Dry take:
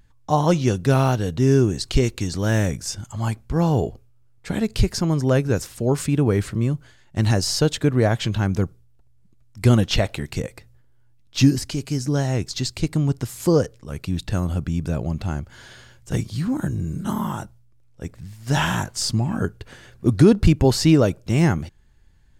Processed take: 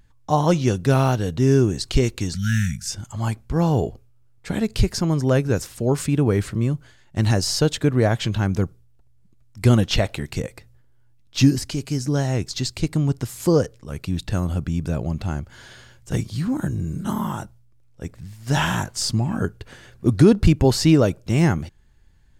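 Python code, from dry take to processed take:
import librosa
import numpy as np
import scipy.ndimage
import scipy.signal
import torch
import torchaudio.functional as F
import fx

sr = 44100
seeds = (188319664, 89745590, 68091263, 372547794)

y = fx.spec_erase(x, sr, start_s=2.34, length_s=0.57, low_hz=250.0, high_hz=1300.0)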